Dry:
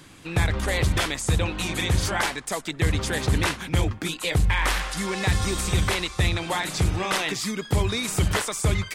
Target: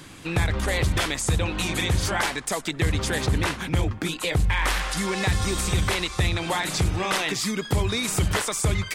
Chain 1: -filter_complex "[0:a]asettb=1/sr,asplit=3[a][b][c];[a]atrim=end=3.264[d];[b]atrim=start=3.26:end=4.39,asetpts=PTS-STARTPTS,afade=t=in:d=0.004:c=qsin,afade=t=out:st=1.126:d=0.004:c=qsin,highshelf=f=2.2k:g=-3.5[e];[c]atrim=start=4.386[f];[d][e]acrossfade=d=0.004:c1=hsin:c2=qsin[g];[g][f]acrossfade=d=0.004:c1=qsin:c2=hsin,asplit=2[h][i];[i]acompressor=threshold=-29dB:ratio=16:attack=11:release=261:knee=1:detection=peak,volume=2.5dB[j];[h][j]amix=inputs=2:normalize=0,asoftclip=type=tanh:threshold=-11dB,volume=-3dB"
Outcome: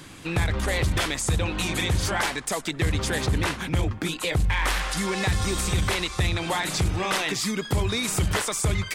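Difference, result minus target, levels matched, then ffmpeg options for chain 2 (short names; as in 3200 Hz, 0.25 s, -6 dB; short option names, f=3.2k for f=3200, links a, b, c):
soft clip: distortion +11 dB
-filter_complex "[0:a]asettb=1/sr,asplit=3[a][b][c];[a]atrim=end=3.264[d];[b]atrim=start=3.26:end=4.39,asetpts=PTS-STARTPTS,afade=t=in:d=0.004:c=qsin,afade=t=out:st=1.126:d=0.004:c=qsin,highshelf=f=2.2k:g=-3.5[e];[c]atrim=start=4.386[f];[d][e]acrossfade=d=0.004:c1=hsin:c2=qsin[g];[g][f]acrossfade=d=0.004:c1=qsin:c2=hsin,asplit=2[h][i];[i]acompressor=threshold=-29dB:ratio=16:attack=11:release=261:knee=1:detection=peak,volume=2.5dB[j];[h][j]amix=inputs=2:normalize=0,asoftclip=type=tanh:threshold=-4.5dB,volume=-3dB"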